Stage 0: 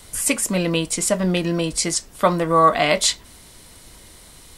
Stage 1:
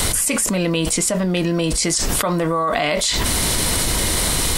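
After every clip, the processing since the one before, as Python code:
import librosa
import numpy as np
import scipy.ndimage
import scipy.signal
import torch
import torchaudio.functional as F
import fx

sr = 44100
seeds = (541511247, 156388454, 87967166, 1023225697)

y = fx.env_flatten(x, sr, amount_pct=100)
y = y * 10.0 ** (-8.5 / 20.0)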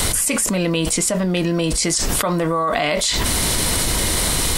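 y = x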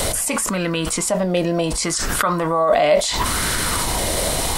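y = fx.bell_lfo(x, sr, hz=0.71, low_hz=580.0, high_hz=1500.0, db=12)
y = y * 10.0 ** (-3.0 / 20.0)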